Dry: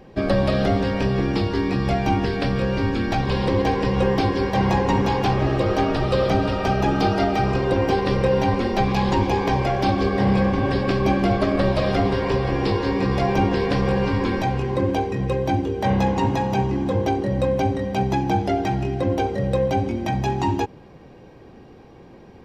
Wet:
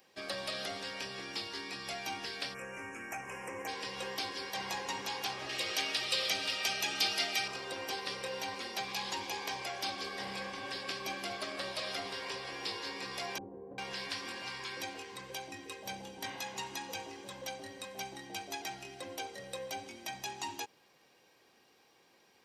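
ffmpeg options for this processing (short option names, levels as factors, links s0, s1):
-filter_complex "[0:a]asplit=3[s0][s1][s2];[s0]afade=t=out:st=2.53:d=0.02[s3];[s1]asuperstop=centerf=4000:order=8:qfactor=1.1,afade=t=in:st=2.53:d=0.02,afade=t=out:st=3.67:d=0.02[s4];[s2]afade=t=in:st=3.67:d=0.02[s5];[s3][s4][s5]amix=inputs=3:normalize=0,asettb=1/sr,asplit=3[s6][s7][s8];[s6]atrim=end=5.494[s9];[s7]atrim=start=5.49:end=7.48,asetpts=PTS-STARTPTS,afade=t=in:d=0.004:c=qsin,afade=t=out:st=1.986:d=0.004:c=qsin,highshelf=f=1700:t=q:w=1.5:g=6.5[s10];[s8]atrim=start=7.476[s11];[s9][s10]acrossfade=d=0.004:c1=hsin:c2=qsin[s12];[s12][s11]acrossfade=d=0.004:c1=qsin:c2=hsin,asettb=1/sr,asplit=3[s13][s14][s15];[s13]atrim=end=13.384[s16];[s14]atrim=start=13.38:end=18.62,asetpts=PTS-STARTPTS,afade=t=in:d=0.004:c=qsin,afade=t=out:st=5.236:d=0.004:c=qsin,acrossover=split=640[s17][s18];[s18]adelay=400[s19];[s17][s19]amix=inputs=2:normalize=0,atrim=end_sample=231084[s20];[s15]atrim=start=18.616[s21];[s16][s20]acrossfade=d=0.004:c1=hsin:c2=qsin[s22];[s22][s21]acrossfade=d=0.004:c1=qsin:c2=hsin,aderivative,volume=1.12"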